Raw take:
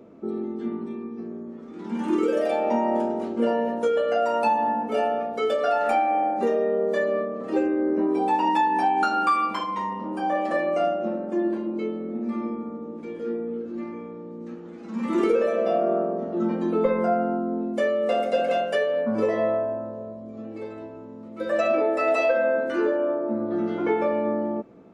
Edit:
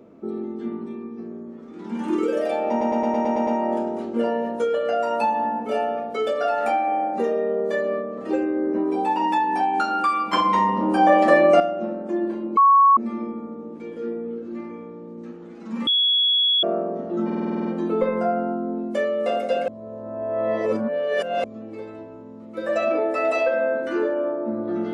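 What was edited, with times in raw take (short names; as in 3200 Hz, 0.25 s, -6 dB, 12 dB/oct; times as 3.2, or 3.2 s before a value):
2.7 stutter 0.11 s, 8 plays
9.56–10.83 gain +9.5 dB
11.8–12.2 bleep 1110 Hz -10.5 dBFS
15.1–15.86 bleep 3360 Hz -16 dBFS
16.48 stutter 0.05 s, 9 plays
18.51–20.27 reverse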